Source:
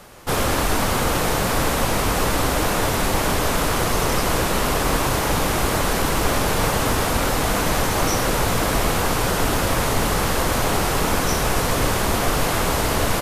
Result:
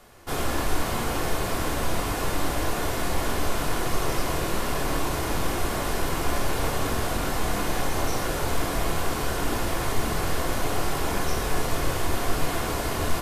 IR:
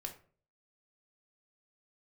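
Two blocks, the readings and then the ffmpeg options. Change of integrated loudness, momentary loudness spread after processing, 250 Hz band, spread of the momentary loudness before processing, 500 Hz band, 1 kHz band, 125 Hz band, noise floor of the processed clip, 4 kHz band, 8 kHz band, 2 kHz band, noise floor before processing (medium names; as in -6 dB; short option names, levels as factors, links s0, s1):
-7.5 dB, 0 LU, -6.5 dB, 0 LU, -7.0 dB, -7.0 dB, -6.5 dB, -29 dBFS, -8.0 dB, -8.5 dB, -7.5 dB, -22 dBFS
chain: -filter_complex "[1:a]atrim=start_sample=2205,asetrate=41454,aresample=44100[s0];[0:a][s0]afir=irnorm=-1:irlink=0,volume=0.531"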